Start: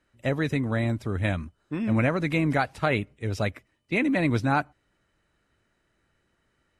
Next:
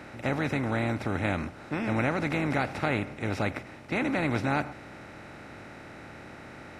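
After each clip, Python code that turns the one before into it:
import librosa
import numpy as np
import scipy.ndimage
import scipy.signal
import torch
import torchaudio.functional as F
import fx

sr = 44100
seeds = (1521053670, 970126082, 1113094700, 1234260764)

y = fx.bin_compress(x, sr, power=0.4)
y = F.gain(torch.from_numpy(y), -8.0).numpy()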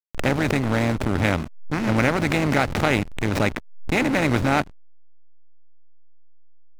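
y = fx.high_shelf(x, sr, hz=3100.0, db=10.5)
y = fx.backlash(y, sr, play_db=-24.5)
y = fx.pre_swell(y, sr, db_per_s=75.0)
y = F.gain(torch.from_numpy(y), 7.5).numpy()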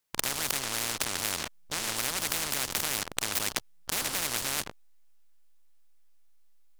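y = fx.spectral_comp(x, sr, ratio=10.0)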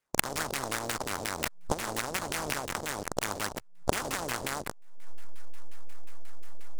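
y = fx.recorder_agc(x, sr, target_db=-13.0, rise_db_per_s=61.0, max_gain_db=30)
y = fx.filter_lfo_lowpass(y, sr, shape='saw_down', hz=5.6, low_hz=440.0, high_hz=3100.0, q=1.8)
y = fx.noise_mod_delay(y, sr, seeds[0], noise_hz=6000.0, depth_ms=0.064)
y = F.gain(torch.from_numpy(y), -1.0).numpy()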